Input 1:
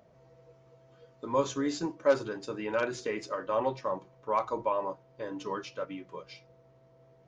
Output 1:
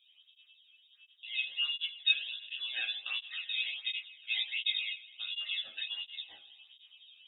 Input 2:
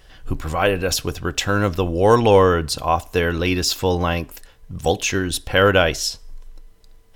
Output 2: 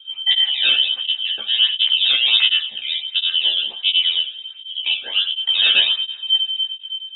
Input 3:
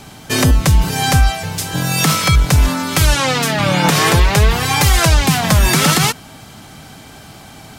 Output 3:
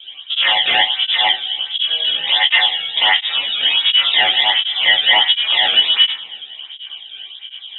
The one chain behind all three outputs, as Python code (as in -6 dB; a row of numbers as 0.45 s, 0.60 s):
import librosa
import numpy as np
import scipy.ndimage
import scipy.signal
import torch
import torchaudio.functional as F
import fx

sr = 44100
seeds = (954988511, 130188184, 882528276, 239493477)

y = fx.tilt_eq(x, sr, slope=-4.0)
y = fx.rider(y, sr, range_db=4, speed_s=2.0)
y = y * np.sin(2.0 * np.pi * 580.0 * np.arange(len(y)) / sr)
y = 10.0 ** (-0.5 / 20.0) * (np.abs((y / 10.0 ** (-0.5 / 20.0) + 3.0) % 4.0 - 2.0) - 1.0)
y = fx.harmonic_tremolo(y, sr, hz=3.4, depth_pct=70, crossover_hz=450.0)
y = np.clip(y, -10.0 ** (-6.0 / 20.0), 10.0 ** (-6.0 / 20.0))
y = fx.doubler(y, sr, ms=15.0, db=-2.5)
y = fx.rev_double_slope(y, sr, seeds[0], early_s=0.53, late_s=3.0, knee_db=-18, drr_db=7.0)
y = fx.freq_invert(y, sr, carrier_hz=3700)
y = fx.flanger_cancel(y, sr, hz=1.4, depth_ms=1.1)
y = F.gain(torch.from_numpy(y), -2.5).numpy()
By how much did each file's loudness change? -1.0 LU, +3.0 LU, +1.0 LU